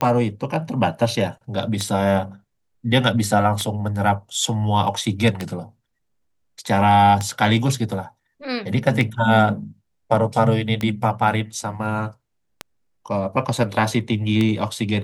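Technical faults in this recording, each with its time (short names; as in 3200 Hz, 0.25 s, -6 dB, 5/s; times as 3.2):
tick 33 1/3 rpm -9 dBFS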